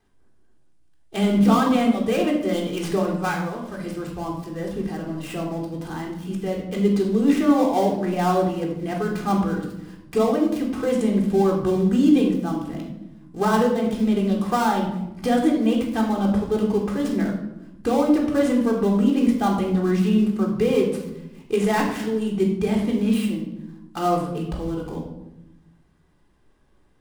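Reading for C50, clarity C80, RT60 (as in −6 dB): 5.0 dB, 7.5 dB, 0.95 s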